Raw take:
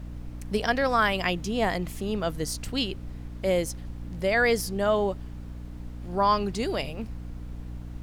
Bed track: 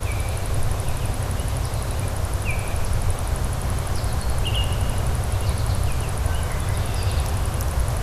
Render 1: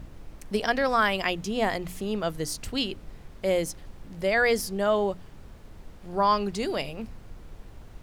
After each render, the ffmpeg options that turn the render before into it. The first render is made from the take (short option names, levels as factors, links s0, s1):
-af "bandreject=f=60:t=h:w=6,bandreject=f=120:t=h:w=6,bandreject=f=180:t=h:w=6,bandreject=f=240:t=h:w=6,bandreject=f=300:t=h:w=6"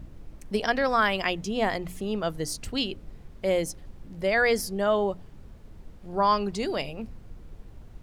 -af "afftdn=nr=6:nf=-48"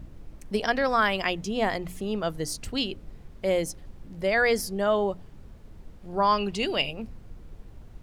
-filter_complex "[0:a]asettb=1/sr,asplit=3[s0][s1][s2];[s0]atrim=end=6.384[s3];[s1]atrim=start=6.38:end=6.91,asetpts=PTS-STARTPTS,afade=t=in:d=0.004:c=qsin,afade=t=out:st=0.526:d=0.004:c=qsin,equalizer=f=2800:w=3.3:g=12[s4];[s2]atrim=start=6.906[s5];[s3][s4]acrossfade=d=0.004:c1=hsin:c2=qsin[s6];[s6][s5]acrossfade=d=0.004:c1=qsin:c2=hsin"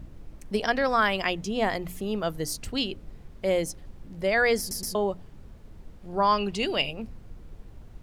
-filter_complex "[0:a]asettb=1/sr,asplit=3[s0][s1][s2];[s0]atrim=end=1.754[s3];[s1]atrim=start=1.75:end=2.58,asetpts=PTS-STARTPTS,afade=t=in:d=0.004:c=qsin,afade=t=out:st=0.826:d=0.004:c=qsin,equalizer=f=13000:w=2.3:g=7.5[s4];[s2]atrim=start=2.576[s5];[s3][s4]acrossfade=d=0.004:c1=hsin:c2=qsin[s6];[s6][s5]acrossfade=d=0.004:c1=qsin:c2=hsin,asplit=4[s7][s8][s9][s10];[s7]atrim=end=4.712[s11];[s8]atrim=start=4.588:end=4.712[s12];[s9]atrim=start=4.588:end=4.712[s13];[s10]atrim=start=4.948[s14];[s11][s12]acrossfade=d=0.004:c1=hsin:c2=hsin[s15];[s15][s13]acrossfade=d=0.004:c1=hsin:c2=hsin[s16];[s16][s14]acrossfade=d=0.004:c1=hsin:c2=hsin"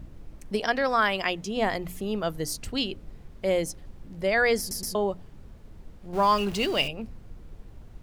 -filter_complex "[0:a]asettb=1/sr,asplit=3[s0][s1][s2];[s0]atrim=end=0.554[s3];[s1]atrim=start=0.55:end=1.57,asetpts=PTS-STARTPTS,afade=t=in:d=0.004:c=qsin,afade=t=out:st=1.016:d=0.004:c=qsin,lowshelf=f=150:g=-6.5[s4];[s2]atrim=start=1.566[s5];[s3][s4]acrossfade=d=0.004:c1=hsin:c2=qsin[s6];[s6][s5]acrossfade=d=0.004:c1=qsin:c2=hsin,asettb=1/sr,asplit=3[s7][s8][s9];[s7]atrim=end=6.134[s10];[s8]atrim=start=6.13:end=6.88,asetpts=PTS-STARTPTS,afade=t=in:d=0.004:c=qsin,afade=t=out:st=0.746:d=0.004:c=qsin,aeval=exprs='val(0)+0.5*0.0178*sgn(val(0))':c=same[s11];[s9]atrim=start=6.876[s12];[s10][s11]acrossfade=d=0.004:c1=hsin:c2=qsin[s13];[s13][s12]acrossfade=d=0.004:c1=qsin:c2=hsin"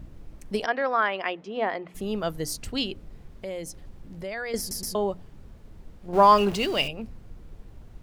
-filter_complex "[0:a]asplit=3[s0][s1][s2];[s0]afade=t=out:st=0.65:d=0.02[s3];[s1]highpass=310,lowpass=2300,afade=t=in:st=0.65:d=0.02,afade=t=out:st=1.94:d=0.02[s4];[s2]afade=t=in:st=1.94:d=0.02[s5];[s3][s4][s5]amix=inputs=3:normalize=0,asettb=1/sr,asplit=3[s6][s7][s8];[s6]atrim=end=2.924[s9];[s7]atrim=start=2.92:end=4.54,asetpts=PTS-STARTPTS,afade=t=in:d=0.004:c=qsin,afade=t=out:st=1.616:d=0.004:c=qsin,acompressor=threshold=0.0178:ratio=2.5:attack=3.2:release=140:knee=1:detection=peak[s10];[s8]atrim=start=4.536[s11];[s9][s10]acrossfade=d=0.004:c1=hsin:c2=qsin[s12];[s12][s11]acrossfade=d=0.004:c1=qsin:c2=hsin,asettb=1/sr,asplit=3[s13][s14][s15];[s13]atrim=end=6.084[s16];[s14]atrim=start=6.08:end=6.56,asetpts=PTS-STARTPTS,afade=t=in:d=0.004:c=qsin,afade=t=out:st=0.476:d=0.004:c=qsin,equalizer=f=600:w=0.43:g=7[s17];[s15]atrim=start=6.556[s18];[s16][s17]acrossfade=d=0.004:c1=hsin:c2=qsin[s19];[s19][s18]acrossfade=d=0.004:c1=qsin:c2=hsin"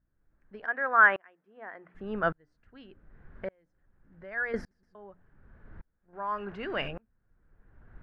-af "lowpass=f=1600:t=q:w=5.2,aeval=exprs='val(0)*pow(10,-36*if(lt(mod(-0.86*n/s,1),2*abs(-0.86)/1000),1-mod(-0.86*n/s,1)/(2*abs(-0.86)/1000),(mod(-0.86*n/s,1)-2*abs(-0.86)/1000)/(1-2*abs(-0.86)/1000))/20)':c=same"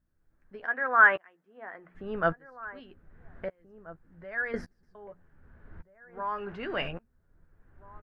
-filter_complex "[0:a]asplit=2[s0][s1];[s1]adelay=12,volume=0.355[s2];[s0][s2]amix=inputs=2:normalize=0,asplit=2[s3][s4];[s4]adelay=1633,volume=0.141,highshelf=f=4000:g=-36.7[s5];[s3][s5]amix=inputs=2:normalize=0"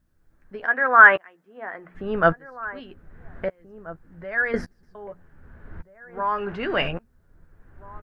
-af "volume=2.66,alimiter=limit=0.891:level=0:latency=1"